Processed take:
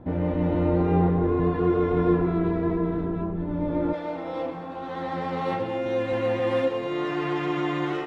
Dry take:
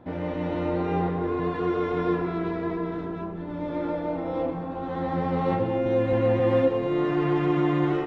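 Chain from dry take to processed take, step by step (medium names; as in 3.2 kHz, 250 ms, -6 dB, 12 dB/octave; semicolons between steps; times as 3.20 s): tilt EQ -2.5 dB/octave, from 3.92 s +2.5 dB/octave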